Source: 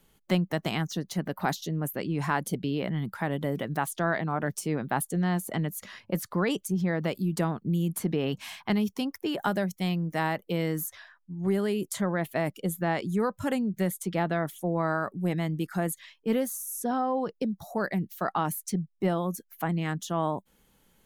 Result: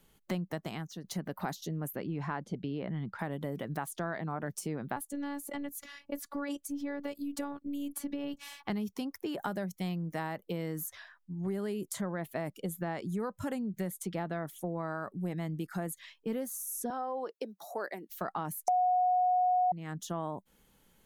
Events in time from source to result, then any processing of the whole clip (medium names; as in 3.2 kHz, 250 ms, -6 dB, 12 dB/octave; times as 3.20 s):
0.54–1.04 s: fade out quadratic, to -10.5 dB
1.96–3.19 s: distance through air 160 m
4.96–8.68 s: robot voice 284 Hz
16.90–18.10 s: high-pass 330 Hz 24 dB/octave
18.68–19.72 s: bleep 729 Hz -7.5 dBFS
whole clip: dynamic bell 2.9 kHz, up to -4 dB, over -45 dBFS, Q 1.1; compression 2.5:1, threshold -33 dBFS; trim -1.5 dB